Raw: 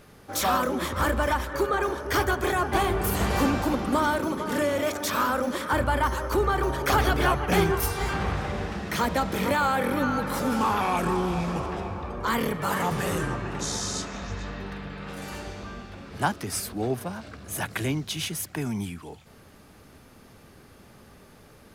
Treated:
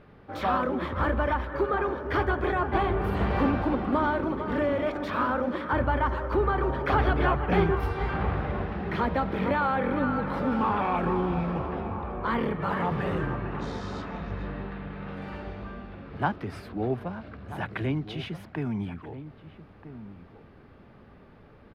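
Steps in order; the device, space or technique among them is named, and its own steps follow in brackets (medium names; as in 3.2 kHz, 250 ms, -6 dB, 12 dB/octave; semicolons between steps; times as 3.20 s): shout across a valley (distance through air 410 m; echo from a far wall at 220 m, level -13 dB)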